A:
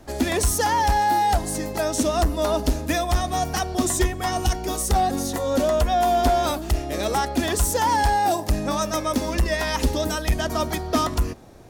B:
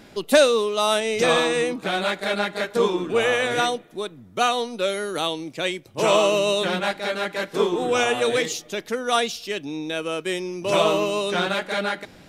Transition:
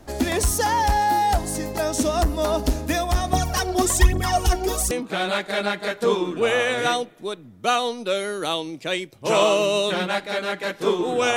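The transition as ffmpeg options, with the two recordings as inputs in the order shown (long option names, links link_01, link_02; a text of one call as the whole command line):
ffmpeg -i cue0.wav -i cue1.wav -filter_complex "[0:a]asettb=1/sr,asplit=3[link_01][link_02][link_03];[link_01]atrim=end=3.334[link_04];[link_02]atrim=start=3.33:end=4.91,asetpts=PTS-STARTPTS,afade=type=in:duration=0.004:curve=qsin,afade=type=out:start_time=1.576:duration=0.004:curve=qsin,aphaser=in_gain=1:out_gain=1:delay=3.1:decay=0.68:speed=1.2:type=triangular[link_05];[link_03]atrim=start=4.906[link_06];[link_04][link_05]acrossfade=duration=0.004:curve1=hsin:curve2=qsin[link_07];[link_07][link_06]acrossfade=duration=0.004:curve1=qsin:curve2=hsin,apad=whole_dur=11.36,atrim=end=11.36,atrim=end=4.912[link_08];[1:a]atrim=start=1.638:end=8.09[link_09];[link_08][link_09]acrossfade=duration=0.004:curve1=hsin:curve2=hsin" out.wav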